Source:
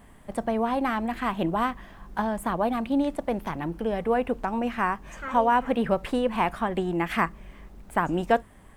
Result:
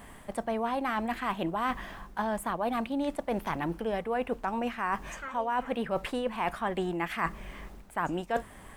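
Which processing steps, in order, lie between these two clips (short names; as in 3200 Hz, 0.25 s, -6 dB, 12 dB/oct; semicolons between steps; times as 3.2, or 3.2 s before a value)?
low shelf 430 Hz -6.5 dB; reverse; compressor 6:1, threshold -35 dBFS, peak gain reduction 16.5 dB; reverse; gain +7 dB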